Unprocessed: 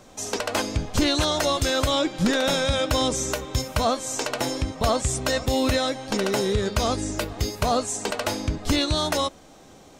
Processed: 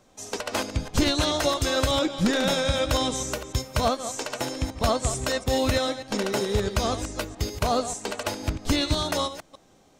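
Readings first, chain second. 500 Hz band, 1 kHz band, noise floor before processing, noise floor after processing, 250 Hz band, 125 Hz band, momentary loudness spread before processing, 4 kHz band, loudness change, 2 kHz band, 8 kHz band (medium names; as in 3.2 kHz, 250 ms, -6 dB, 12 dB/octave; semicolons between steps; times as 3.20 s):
-1.5 dB, -1.5 dB, -49 dBFS, -58 dBFS, -1.5 dB, -1.0 dB, 6 LU, -2.0 dB, -1.5 dB, -2.0 dB, -2.5 dB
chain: chunks repeated in reverse 147 ms, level -8 dB; upward expansion 1.5:1, over -37 dBFS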